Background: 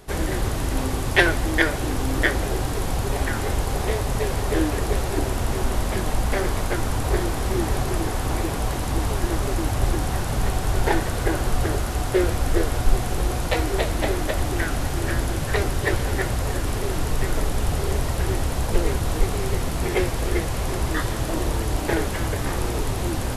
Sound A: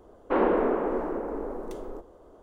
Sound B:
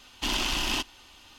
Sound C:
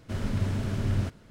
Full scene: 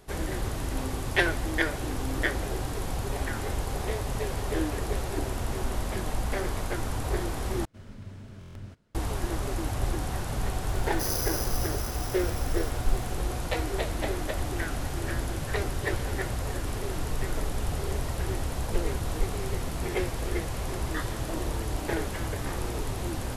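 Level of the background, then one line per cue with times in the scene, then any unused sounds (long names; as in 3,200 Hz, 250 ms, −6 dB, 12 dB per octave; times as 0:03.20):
background −7 dB
0:03.83: mix in B −14.5 dB + downward compressor, threshold −39 dBFS
0:07.65: overwrite with C −15 dB + buffer that repeats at 0:00.74, samples 1,024, times 6
0:10.69: mix in A −18 dB + bad sample-rate conversion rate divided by 8×, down none, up zero stuff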